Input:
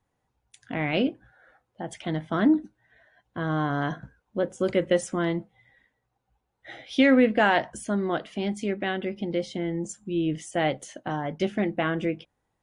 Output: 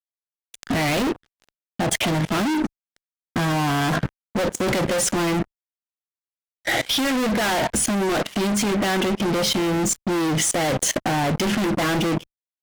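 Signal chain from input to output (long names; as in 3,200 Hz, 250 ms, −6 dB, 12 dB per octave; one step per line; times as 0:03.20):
fuzz pedal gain 44 dB, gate −49 dBFS
output level in coarse steps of 21 dB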